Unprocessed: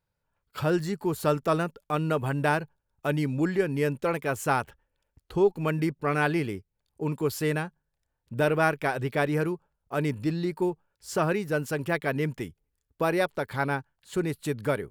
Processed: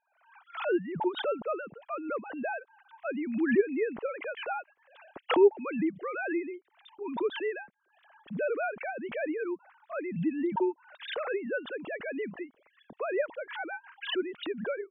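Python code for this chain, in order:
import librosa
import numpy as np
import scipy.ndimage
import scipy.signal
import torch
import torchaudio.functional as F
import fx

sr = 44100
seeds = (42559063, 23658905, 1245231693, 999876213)

y = fx.sine_speech(x, sr)
y = fx.pre_swell(y, sr, db_per_s=82.0)
y = y * librosa.db_to_amplitude(-5.5)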